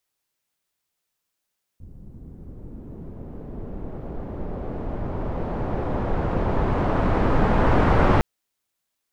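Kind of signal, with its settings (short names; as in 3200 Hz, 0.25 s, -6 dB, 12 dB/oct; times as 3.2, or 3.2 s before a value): swept filtered noise pink, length 6.41 s lowpass, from 160 Hz, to 1200 Hz, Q 0.88, linear, gain ramp +24.5 dB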